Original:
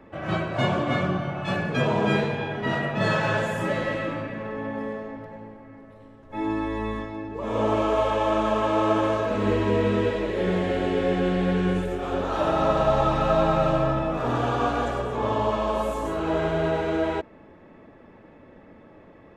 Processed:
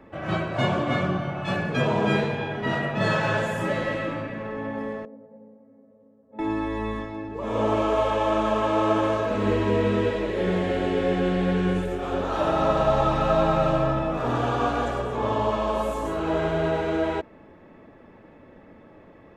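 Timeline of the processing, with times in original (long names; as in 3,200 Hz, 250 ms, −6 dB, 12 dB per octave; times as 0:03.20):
0:05.05–0:06.39: pair of resonant band-passes 340 Hz, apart 1 octave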